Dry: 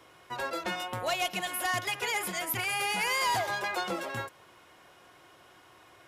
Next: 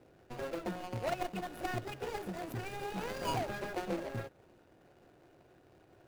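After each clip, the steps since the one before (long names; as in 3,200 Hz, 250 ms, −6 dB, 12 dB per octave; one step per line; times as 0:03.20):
running median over 41 samples
level +1 dB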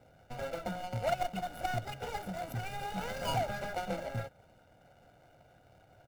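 comb filter 1.4 ms, depth 74%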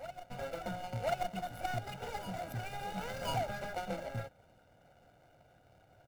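backwards echo 1,034 ms −12 dB
level −2.5 dB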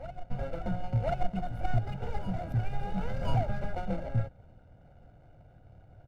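RIAA equalisation playback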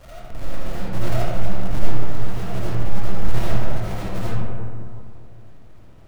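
each half-wave held at its own peak
comb and all-pass reverb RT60 2.4 s, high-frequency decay 0.35×, pre-delay 35 ms, DRR −9 dB
level −8.5 dB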